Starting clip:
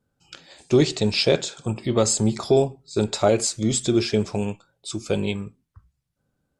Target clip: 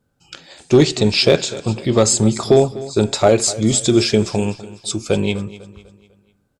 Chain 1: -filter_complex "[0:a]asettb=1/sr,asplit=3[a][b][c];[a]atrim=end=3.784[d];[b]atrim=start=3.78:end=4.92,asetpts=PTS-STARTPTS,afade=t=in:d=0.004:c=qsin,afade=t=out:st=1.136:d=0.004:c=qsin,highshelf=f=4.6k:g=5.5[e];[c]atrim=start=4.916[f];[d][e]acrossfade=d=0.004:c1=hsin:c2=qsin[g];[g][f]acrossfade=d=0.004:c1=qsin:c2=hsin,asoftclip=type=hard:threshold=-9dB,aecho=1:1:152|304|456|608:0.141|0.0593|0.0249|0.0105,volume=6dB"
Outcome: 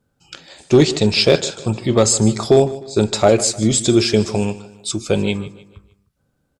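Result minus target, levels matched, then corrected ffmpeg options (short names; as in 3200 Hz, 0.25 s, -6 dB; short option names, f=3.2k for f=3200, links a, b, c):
echo 97 ms early
-filter_complex "[0:a]asettb=1/sr,asplit=3[a][b][c];[a]atrim=end=3.784[d];[b]atrim=start=3.78:end=4.92,asetpts=PTS-STARTPTS,afade=t=in:d=0.004:c=qsin,afade=t=out:st=1.136:d=0.004:c=qsin,highshelf=f=4.6k:g=5.5[e];[c]atrim=start=4.916[f];[d][e]acrossfade=d=0.004:c1=hsin:c2=qsin[g];[g][f]acrossfade=d=0.004:c1=qsin:c2=hsin,asoftclip=type=hard:threshold=-9dB,aecho=1:1:249|498|747|996:0.141|0.0593|0.0249|0.0105,volume=6dB"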